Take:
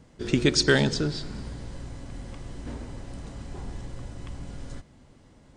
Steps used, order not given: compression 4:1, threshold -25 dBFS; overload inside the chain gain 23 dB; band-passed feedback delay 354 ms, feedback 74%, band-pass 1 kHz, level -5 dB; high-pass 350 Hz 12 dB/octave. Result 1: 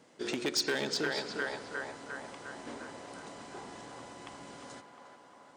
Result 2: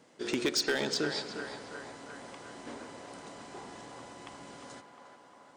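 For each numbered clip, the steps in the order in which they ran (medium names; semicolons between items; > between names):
band-passed feedback delay > compression > overload inside the chain > high-pass; high-pass > compression > overload inside the chain > band-passed feedback delay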